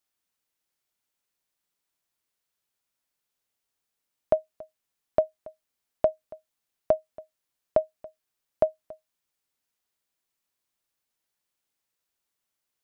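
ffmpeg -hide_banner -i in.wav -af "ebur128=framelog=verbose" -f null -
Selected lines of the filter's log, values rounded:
Integrated loudness:
  I:         -29.4 LUFS
  Threshold: -41.7 LUFS
Loudness range:
  LRA:         6.0 LU
  Threshold: -54.2 LUFS
  LRA low:   -37.9 LUFS
  LRA high:  -31.9 LUFS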